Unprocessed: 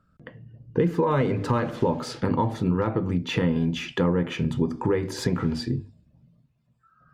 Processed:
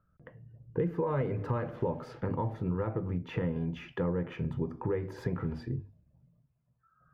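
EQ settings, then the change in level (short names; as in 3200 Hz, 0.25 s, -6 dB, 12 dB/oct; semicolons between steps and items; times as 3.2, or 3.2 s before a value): graphic EQ 250/4000/8000 Hz -8/-7/-11 dB; dynamic EQ 1000 Hz, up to -4 dB, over -38 dBFS, Q 1.3; high shelf 2400 Hz -10.5 dB; -4.5 dB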